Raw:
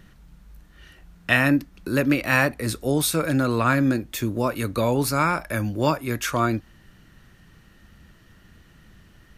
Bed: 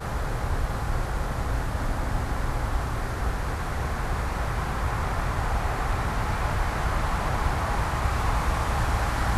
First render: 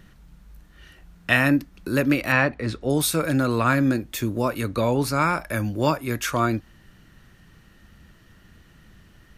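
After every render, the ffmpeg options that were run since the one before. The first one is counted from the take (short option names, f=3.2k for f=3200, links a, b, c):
-filter_complex "[0:a]asettb=1/sr,asplit=3[a][b][c];[a]atrim=end=2.324[d];[b]atrim=start=2.32:end=2.9,asetpts=PTS-STARTPTS,afade=t=in:d=0.004:c=qsin,afade=t=out:st=0.576:d=0.004:c=qsin,lowpass=3.7k[e];[c]atrim=start=2.896[f];[d][e]acrossfade=d=0.004:c1=hsin:c2=qsin[g];[g][f]acrossfade=d=0.004:c1=qsin:c2=hsin,asettb=1/sr,asplit=3[h][i][j];[h]atrim=end=4.614[k];[i]atrim=start=4.61:end=5.22,asetpts=PTS-STARTPTS,afade=t=in:d=0.004:c=qsin,afade=t=out:st=0.606:d=0.004:c=qsin,highshelf=f=9.5k:g=-9.5[l];[j]atrim=start=5.216[m];[k][l]acrossfade=d=0.004:c1=hsin:c2=qsin[n];[n][m]acrossfade=d=0.004:c1=qsin:c2=hsin"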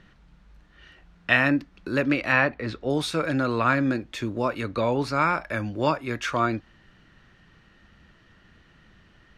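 -af "lowpass=4.2k,lowshelf=f=280:g=-6.5"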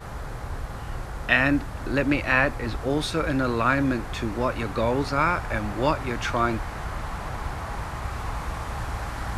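-filter_complex "[1:a]volume=-6dB[a];[0:a][a]amix=inputs=2:normalize=0"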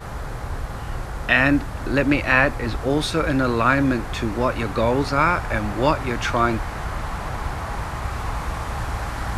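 -af "volume=4dB,alimiter=limit=-2dB:level=0:latency=1"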